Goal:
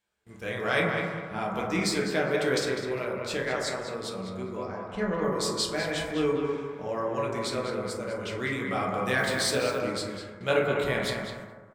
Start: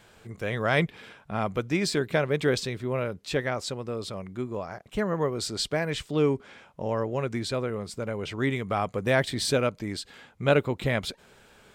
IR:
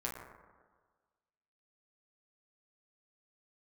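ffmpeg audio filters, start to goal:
-filter_complex "[0:a]asettb=1/sr,asplit=3[s0][s1][s2];[s0]atrim=end=4.654[s3];[s1]atrim=start=4.65:end=5.24,asetpts=PTS-STARTPTS,afade=t=in:d=0.004:c=qsin,afade=t=out:st=0.586:d=0.004:c=qsin,adynamicsmooth=sensitivity=3:basefreq=5100[s4];[s2]atrim=start=5.236[s5];[s3][s4]acrossfade=d=0.004:c1=hsin:c2=qsin[s6];[s6][s5]acrossfade=d=0.004:c1=qsin:c2=hsin,highshelf=f=2200:g=9.5,bandreject=f=50:t=h:w=6,bandreject=f=100:t=h:w=6,bandreject=f=150:t=h:w=6,asplit=2[s7][s8];[s8]adelay=202,lowpass=f=2500:p=1,volume=0.631,asplit=2[s9][s10];[s10]adelay=202,lowpass=f=2500:p=1,volume=0.32,asplit=2[s11][s12];[s12]adelay=202,lowpass=f=2500:p=1,volume=0.32,asplit=2[s13][s14];[s14]adelay=202,lowpass=f=2500:p=1,volume=0.32[s15];[s7][s9][s11][s13][s15]amix=inputs=5:normalize=0,agate=range=0.0631:threshold=0.00794:ratio=16:detection=peak[s16];[1:a]atrim=start_sample=2205[s17];[s16][s17]afir=irnorm=-1:irlink=0,asettb=1/sr,asplit=3[s18][s19][s20];[s18]atrim=end=9.184[s21];[s19]atrim=start=9.18:end=9.79,asetpts=PTS-STARTPTS,afade=t=in:d=0.004:c=qsin,afade=t=out:st=0.606:d=0.004:c=qsin,acrusher=bits=8:dc=4:mix=0:aa=0.000001[s22];[s20]atrim=start=9.786[s23];[s21][s22]acrossfade=d=0.004:c1=hsin:c2=qsin[s24];[s24][s23]acrossfade=d=0.004:c1=qsin:c2=hsin,volume=0.531"

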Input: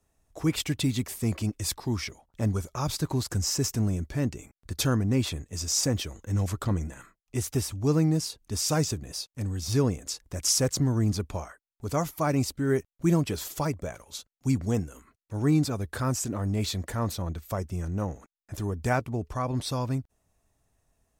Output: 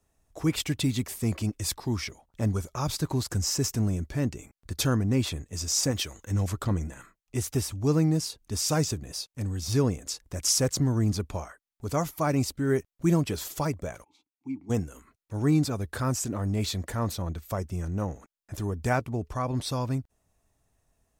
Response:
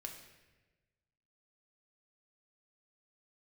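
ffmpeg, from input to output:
-filter_complex "[0:a]asettb=1/sr,asplit=3[s0][s1][s2];[s0]atrim=end=5.914[s3];[s1]atrim=start=5.91:end=6.31,asetpts=PTS-STARTPTS,afade=t=in:d=0.004:c=qsin,afade=t=out:st=0.396:d=0.004:c=qsin,tiltshelf=f=740:g=-4.5[s4];[s2]atrim=start=6.306[s5];[s3][s4]acrossfade=d=0.004:c1=hsin:c2=qsin[s6];[s6][s5]acrossfade=d=0.004:c1=qsin:c2=hsin,asplit=3[s7][s8][s9];[s7]afade=t=out:st=14.03:d=0.02[s10];[s8]asplit=3[s11][s12][s13];[s11]bandpass=f=300:t=q:w=8,volume=1[s14];[s12]bandpass=f=870:t=q:w=8,volume=0.501[s15];[s13]bandpass=f=2240:t=q:w=8,volume=0.355[s16];[s14][s15][s16]amix=inputs=3:normalize=0,afade=t=in:st=14.03:d=0.02,afade=t=out:st=14.69:d=0.02[s17];[s9]afade=t=in:st=14.69:d=0.02[s18];[s10][s17][s18]amix=inputs=3:normalize=0"

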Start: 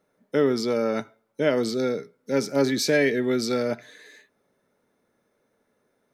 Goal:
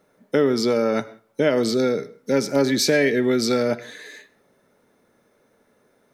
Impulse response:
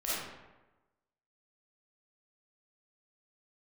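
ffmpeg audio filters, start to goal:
-filter_complex "[0:a]acompressor=threshold=0.0398:ratio=2,asplit=2[s0][s1];[1:a]atrim=start_sample=2205,afade=t=out:st=0.2:d=0.01,atrim=end_sample=9261,adelay=43[s2];[s1][s2]afir=irnorm=-1:irlink=0,volume=0.0531[s3];[s0][s3]amix=inputs=2:normalize=0,volume=2.66"

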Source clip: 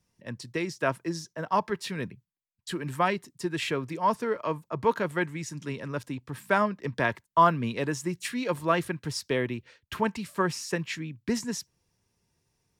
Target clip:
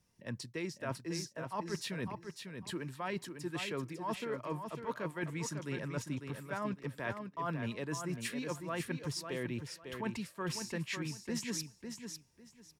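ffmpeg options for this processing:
-af "equalizer=f=11000:t=o:w=0.26:g=2,areverse,acompressor=threshold=0.02:ratio=12,areverse,aecho=1:1:550|1100|1650:0.447|0.0938|0.0197,volume=0.891"

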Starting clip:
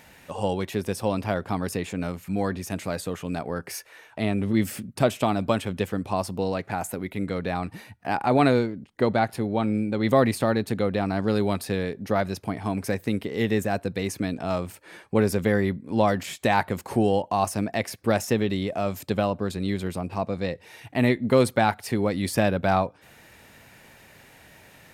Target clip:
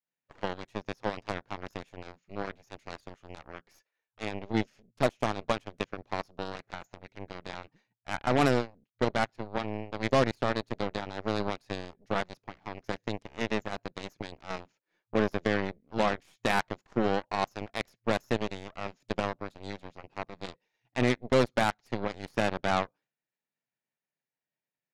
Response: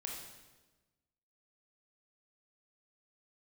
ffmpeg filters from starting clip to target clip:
-af "agate=range=0.0224:threshold=0.0126:ratio=3:detection=peak,afftfilt=real='re*between(b*sr/4096,110,7100)':imag='im*between(b*sr/4096,110,7100)':win_size=4096:overlap=0.75,aeval=exprs='0.376*(cos(1*acos(clip(val(0)/0.376,-1,1)))-cos(1*PI/2))+0.0266*(cos(6*acos(clip(val(0)/0.376,-1,1)))-cos(6*PI/2))+0.0596*(cos(7*acos(clip(val(0)/0.376,-1,1)))-cos(7*PI/2))+0.00299*(cos(8*acos(clip(val(0)/0.376,-1,1)))-cos(8*PI/2))':c=same,volume=0.562"

